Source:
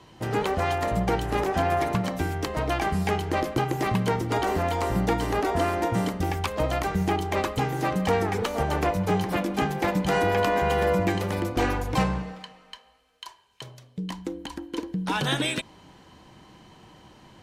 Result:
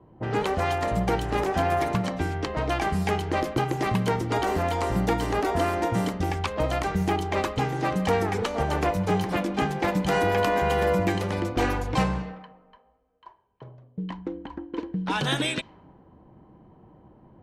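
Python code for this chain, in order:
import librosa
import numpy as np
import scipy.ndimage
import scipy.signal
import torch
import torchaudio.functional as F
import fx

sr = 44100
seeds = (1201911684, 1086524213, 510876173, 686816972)

y = fx.env_lowpass(x, sr, base_hz=630.0, full_db=-21.0)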